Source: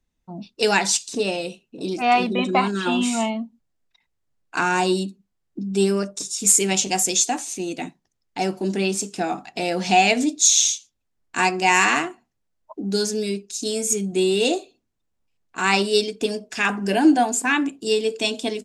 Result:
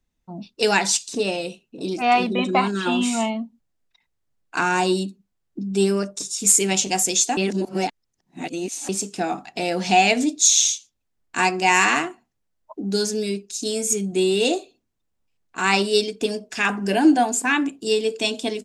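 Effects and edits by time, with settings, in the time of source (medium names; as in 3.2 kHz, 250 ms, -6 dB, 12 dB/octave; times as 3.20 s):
7.37–8.89 s: reverse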